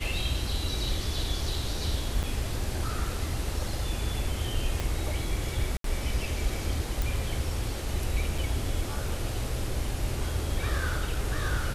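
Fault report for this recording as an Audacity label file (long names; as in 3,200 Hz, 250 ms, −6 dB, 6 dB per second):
2.230000	2.240000	drop-out 5.6 ms
4.800000	4.800000	click
5.770000	5.840000	drop-out 73 ms
7.020000	7.020000	click
8.380000	8.380000	drop-out 3.4 ms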